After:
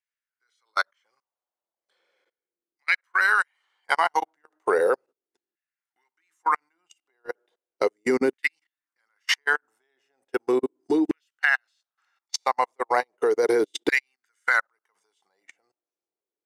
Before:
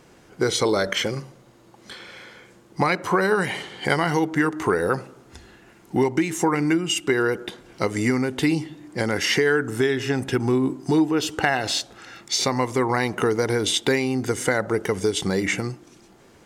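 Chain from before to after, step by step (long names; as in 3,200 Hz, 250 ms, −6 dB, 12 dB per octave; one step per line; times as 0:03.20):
auto-filter high-pass saw down 0.36 Hz 320–2,000 Hz
output level in coarse steps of 21 dB
expander for the loud parts 2.5 to 1, over −44 dBFS
level +3 dB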